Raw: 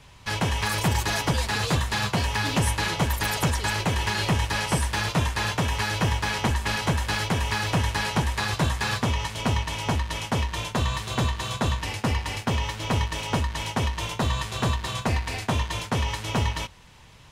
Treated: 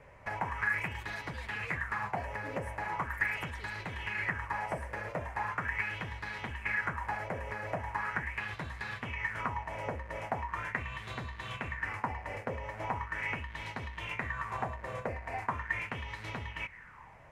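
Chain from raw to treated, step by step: resonant high shelf 2.7 kHz -10 dB, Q 3; compression, threshold -30 dBFS, peak gain reduction 12 dB; sweeping bell 0.4 Hz 520–4000 Hz +15 dB; trim -8 dB

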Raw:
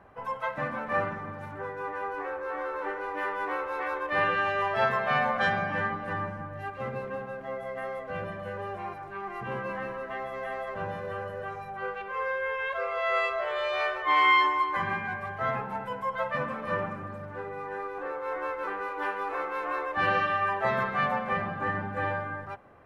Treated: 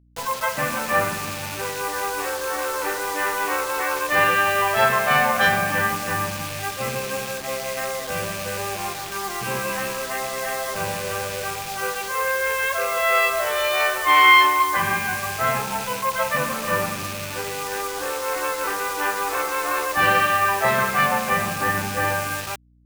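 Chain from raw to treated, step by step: rattle on loud lows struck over -46 dBFS, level -35 dBFS; bit crusher 7-bit; hum 60 Hz, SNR 32 dB; treble shelf 2.4 kHz +8 dB; trim +6 dB

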